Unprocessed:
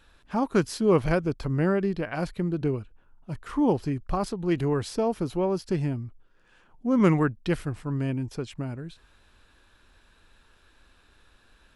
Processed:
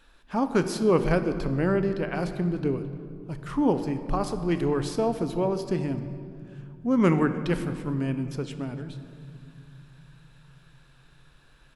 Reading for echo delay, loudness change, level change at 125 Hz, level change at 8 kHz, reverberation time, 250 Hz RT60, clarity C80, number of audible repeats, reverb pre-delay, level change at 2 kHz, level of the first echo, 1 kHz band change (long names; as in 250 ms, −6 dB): 298 ms, 0.0 dB, −0.5 dB, +0.5 dB, 2.4 s, 4.7 s, 11.0 dB, 1, 3 ms, +0.5 dB, −23.0 dB, +0.5 dB